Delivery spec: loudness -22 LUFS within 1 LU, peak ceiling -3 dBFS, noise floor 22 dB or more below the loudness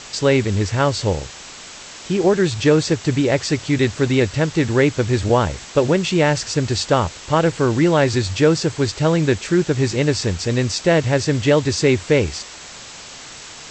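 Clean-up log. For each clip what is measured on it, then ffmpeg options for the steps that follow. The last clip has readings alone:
noise floor -37 dBFS; noise floor target -41 dBFS; loudness -18.5 LUFS; peak -3.0 dBFS; loudness target -22.0 LUFS
-> -af "afftdn=nr=6:nf=-37"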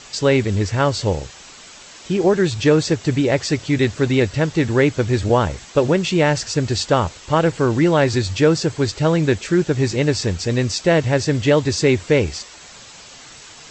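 noise floor -41 dBFS; loudness -18.5 LUFS; peak -3.0 dBFS; loudness target -22.0 LUFS
-> -af "volume=-3.5dB"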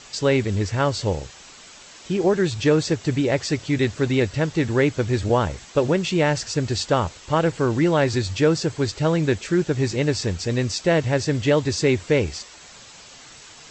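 loudness -22.0 LUFS; peak -6.5 dBFS; noise floor -45 dBFS

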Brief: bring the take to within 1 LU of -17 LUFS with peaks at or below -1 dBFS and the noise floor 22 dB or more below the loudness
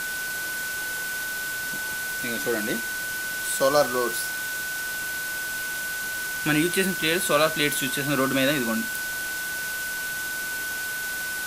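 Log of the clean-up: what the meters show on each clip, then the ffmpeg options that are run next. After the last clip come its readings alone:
steady tone 1500 Hz; tone level -29 dBFS; noise floor -31 dBFS; noise floor target -48 dBFS; loudness -25.5 LUFS; peak -6.5 dBFS; loudness target -17.0 LUFS
-> -af "bandreject=f=1.5k:w=30"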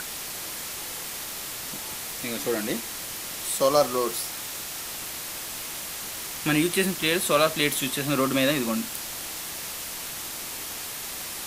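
steady tone none; noise floor -35 dBFS; noise floor target -49 dBFS
-> -af "afftdn=nr=14:nf=-35"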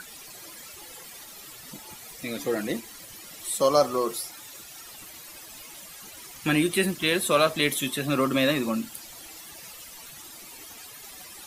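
noise floor -45 dBFS; noise floor target -48 dBFS
-> -af "afftdn=nr=6:nf=-45"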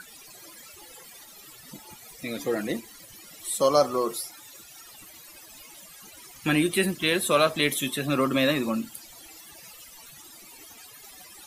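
noise floor -49 dBFS; loudness -25.5 LUFS; peak -7.5 dBFS; loudness target -17.0 LUFS
-> -af "volume=8.5dB,alimiter=limit=-1dB:level=0:latency=1"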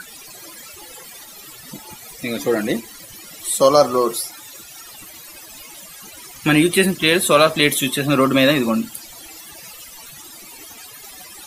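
loudness -17.0 LUFS; peak -1.0 dBFS; noise floor -40 dBFS

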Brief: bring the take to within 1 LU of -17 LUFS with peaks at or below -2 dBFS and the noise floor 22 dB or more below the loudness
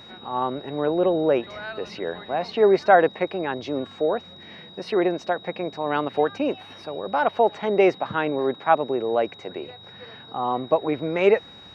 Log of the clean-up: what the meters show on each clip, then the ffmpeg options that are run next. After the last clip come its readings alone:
steady tone 3800 Hz; tone level -44 dBFS; loudness -23.5 LUFS; peak -4.0 dBFS; loudness target -17.0 LUFS
-> -af "bandreject=f=3.8k:w=30"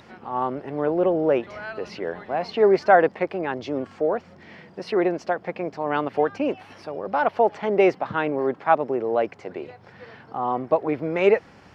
steady tone none; loudness -23.5 LUFS; peak -3.5 dBFS; loudness target -17.0 LUFS
-> -af "volume=6.5dB,alimiter=limit=-2dB:level=0:latency=1"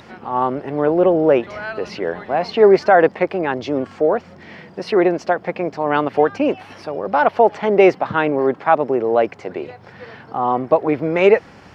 loudness -17.5 LUFS; peak -2.0 dBFS; noise floor -44 dBFS

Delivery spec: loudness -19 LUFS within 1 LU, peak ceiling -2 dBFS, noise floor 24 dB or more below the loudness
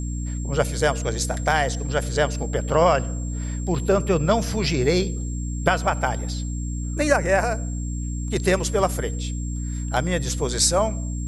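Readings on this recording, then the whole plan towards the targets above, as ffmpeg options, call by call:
hum 60 Hz; harmonics up to 300 Hz; hum level -25 dBFS; steady tone 7500 Hz; tone level -39 dBFS; loudness -23.5 LUFS; peak -1.5 dBFS; loudness target -19.0 LUFS
-> -af "bandreject=f=60:t=h:w=4,bandreject=f=120:t=h:w=4,bandreject=f=180:t=h:w=4,bandreject=f=240:t=h:w=4,bandreject=f=300:t=h:w=4"
-af "bandreject=f=7.5k:w=30"
-af "volume=4.5dB,alimiter=limit=-2dB:level=0:latency=1"

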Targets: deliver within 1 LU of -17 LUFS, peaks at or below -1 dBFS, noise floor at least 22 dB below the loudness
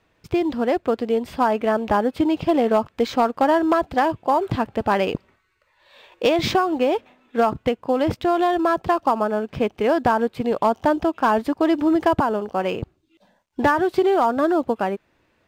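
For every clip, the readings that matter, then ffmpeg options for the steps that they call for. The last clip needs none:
loudness -21.0 LUFS; peak -9.5 dBFS; loudness target -17.0 LUFS
-> -af "volume=4dB"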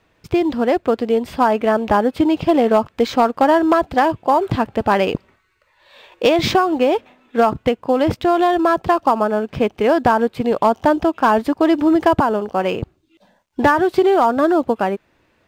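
loudness -17.0 LUFS; peak -5.5 dBFS; noise floor -62 dBFS

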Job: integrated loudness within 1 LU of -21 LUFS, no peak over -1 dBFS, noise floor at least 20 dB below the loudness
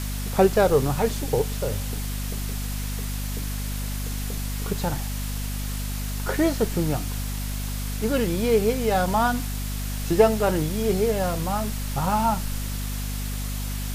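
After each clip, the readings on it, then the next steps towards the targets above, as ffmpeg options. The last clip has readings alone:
hum 50 Hz; harmonics up to 250 Hz; hum level -27 dBFS; noise floor -29 dBFS; noise floor target -46 dBFS; loudness -25.5 LUFS; peak -5.0 dBFS; loudness target -21.0 LUFS
-> -af "bandreject=f=50:t=h:w=6,bandreject=f=100:t=h:w=6,bandreject=f=150:t=h:w=6,bandreject=f=200:t=h:w=6,bandreject=f=250:t=h:w=6"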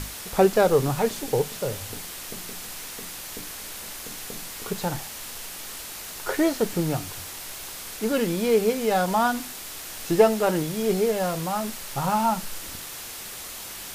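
hum none; noise floor -38 dBFS; noise floor target -47 dBFS
-> -af "afftdn=nr=9:nf=-38"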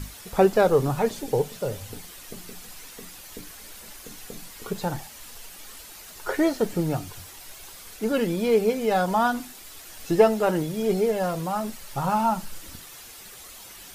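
noise floor -44 dBFS; noise floor target -45 dBFS
-> -af "afftdn=nr=6:nf=-44"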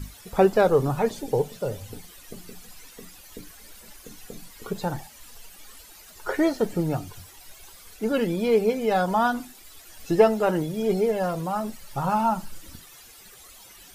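noise floor -49 dBFS; loudness -24.5 LUFS; peak -5.5 dBFS; loudness target -21.0 LUFS
-> -af "volume=3.5dB"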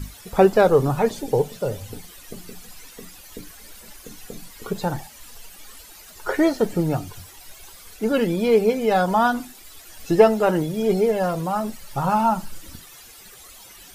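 loudness -21.0 LUFS; peak -2.0 dBFS; noise floor -45 dBFS

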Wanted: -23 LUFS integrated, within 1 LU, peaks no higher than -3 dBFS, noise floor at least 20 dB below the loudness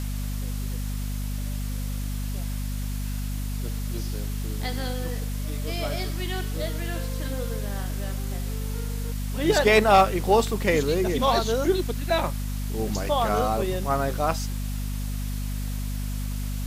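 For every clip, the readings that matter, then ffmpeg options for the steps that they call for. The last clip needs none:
hum 50 Hz; harmonics up to 250 Hz; hum level -27 dBFS; noise floor -29 dBFS; noise floor target -47 dBFS; loudness -26.5 LUFS; peak -7.5 dBFS; loudness target -23.0 LUFS
-> -af "bandreject=f=50:t=h:w=4,bandreject=f=100:t=h:w=4,bandreject=f=150:t=h:w=4,bandreject=f=200:t=h:w=4,bandreject=f=250:t=h:w=4"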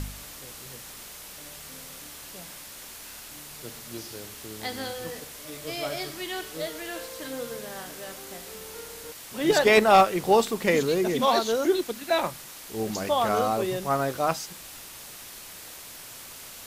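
hum none; noise floor -43 dBFS; noise floor target -46 dBFS
-> -af "afftdn=nr=6:nf=-43"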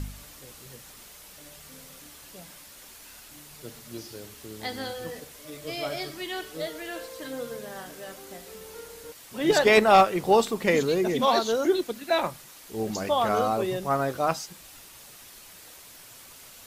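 noise floor -49 dBFS; loudness -25.0 LUFS; peak -8.5 dBFS; loudness target -23.0 LUFS
-> -af "volume=2dB"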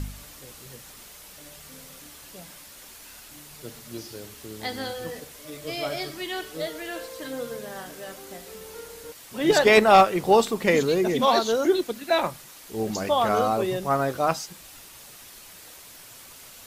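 loudness -23.0 LUFS; peak -6.5 dBFS; noise floor -47 dBFS

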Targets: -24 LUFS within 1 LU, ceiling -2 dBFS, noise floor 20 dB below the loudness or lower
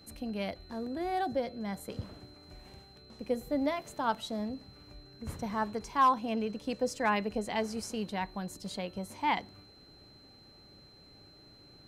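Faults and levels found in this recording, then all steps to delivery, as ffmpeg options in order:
steady tone 4100 Hz; tone level -57 dBFS; loudness -34.0 LUFS; peak -17.0 dBFS; loudness target -24.0 LUFS
-> -af "bandreject=f=4.1k:w=30"
-af "volume=10dB"

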